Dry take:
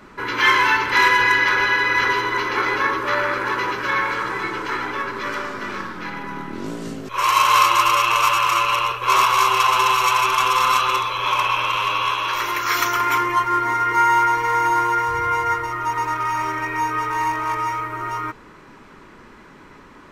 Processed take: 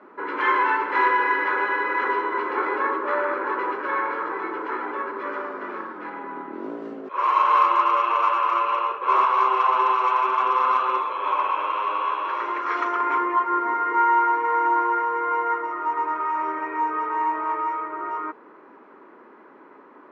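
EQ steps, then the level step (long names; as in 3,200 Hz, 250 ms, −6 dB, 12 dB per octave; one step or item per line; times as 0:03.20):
high-pass filter 290 Hz 24 dB per octave
low-pass filter 1,200 Hz 12 dB per octave
0.0 dB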